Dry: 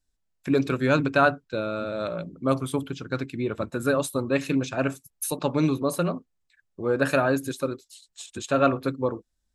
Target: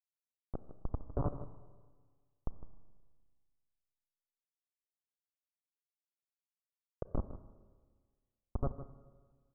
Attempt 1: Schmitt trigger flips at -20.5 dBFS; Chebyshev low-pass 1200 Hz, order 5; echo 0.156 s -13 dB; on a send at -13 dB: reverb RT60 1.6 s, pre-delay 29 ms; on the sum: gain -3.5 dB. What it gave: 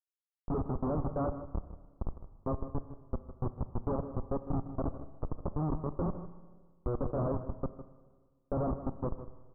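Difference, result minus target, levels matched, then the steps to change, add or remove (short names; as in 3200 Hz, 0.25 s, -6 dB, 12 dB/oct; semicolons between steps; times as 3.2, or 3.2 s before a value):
Schmitt trigger: distortion -16 dB
change: Schmitt trigger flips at -12.5 dBFS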